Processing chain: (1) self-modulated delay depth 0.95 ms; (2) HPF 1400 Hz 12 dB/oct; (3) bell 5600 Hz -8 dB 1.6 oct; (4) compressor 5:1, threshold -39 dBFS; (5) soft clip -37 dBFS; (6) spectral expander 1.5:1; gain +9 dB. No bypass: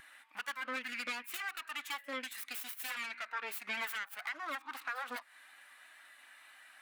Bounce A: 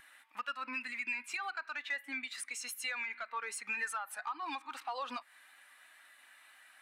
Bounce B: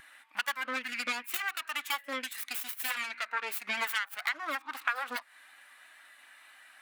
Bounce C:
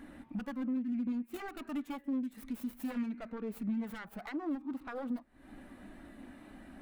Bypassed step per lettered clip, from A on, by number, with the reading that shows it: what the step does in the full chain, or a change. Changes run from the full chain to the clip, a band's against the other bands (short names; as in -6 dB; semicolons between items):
1, 8 kHz band +3.5 dB; 5, distortion -10 dB; 2, 250 Hz band +29.0 dB